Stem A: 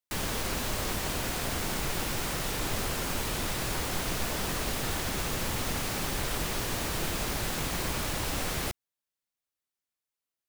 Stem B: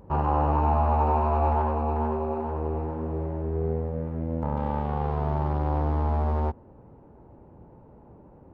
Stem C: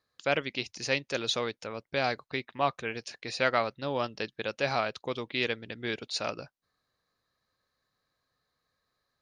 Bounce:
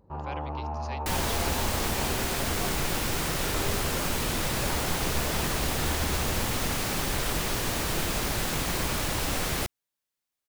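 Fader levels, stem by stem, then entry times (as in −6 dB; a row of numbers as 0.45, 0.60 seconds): +3.0, −11.0, −14.0 decibels; 0.95, 0.00, 0.00 seconds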